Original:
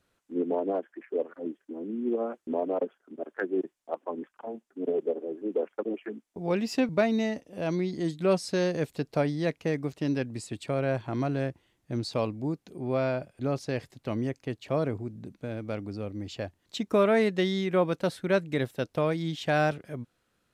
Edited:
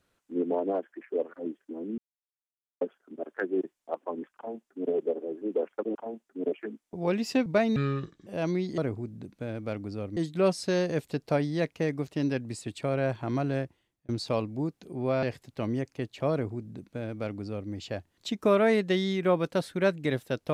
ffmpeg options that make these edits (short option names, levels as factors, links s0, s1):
-filter_complex "[0:a]asplit=11[s0][s1][s2][s3][s4][s5][s6][s7][s8][s9][s10];[s0]atrim=end=1.98,asetpts=PTS-STARTPTS,afade=t=out:st=1.976:d=0.004:c=hsin[s11];[s1]atrim=start=1.98:end=2.81,asetpts=PTS-STARTPTS,volume=0[s12];[s2]atrim=start=2.81:end=5.952,asetpts=PTS-STARTPTS,afade=t=in:d=0.004:c=hsin[s13];[s3]atrim=start=4.358:end=4.932[s14];[s4]atrim=start=5.948:end=7.194[s15];[s5]atrim=start=7.19:end=7.51,asetpts=PTS-STARTPTS,asetrate=27783,aresample=44100[s16];[s6]atrim=start=7.506:end=8.022[s17];[s7]atrim=start=14.798:end=16.192[s18];[s8]atrim=start=8.018:end=11.94,asetpts=PTS-STARTPTS,afade=t=out:st=3.412:d=0.51[s19];[s9]atrim=start=11.94:end=13.082,asetpts=PTS-STARTPTS,afade=t=in:d=0.004:c=hsin[s20];[s10]atrim=start=13.708[s21];[s11][s12][s13]concat=n=3:v=0:a=1[s22];[s22][s14]acrossfade=d=0.004:c1=hsin:c2=hsin[s23];[s23][s15]acrossfade=d=0.004:c1=hsin:c2=hsin[s24];[s24][s16]acrossfade=d=0.004:c1=hsin:c2=hsin[s25];[s25][s17]acrossfade=d=0.004:c1=hsin:c2=hsin[s26];[s26][s18]acrossfade=d=0.004:c1=hsin:c2=hsin[s27];[s19][s20]concat=n=2:v=0:a=1[s28];[s27][s28]acrossfade=d=0.004:c1=hsin:c2=hsin[s29];[s29][s21]acrossfade=d=0.004:c1=hsin:c2=hsin"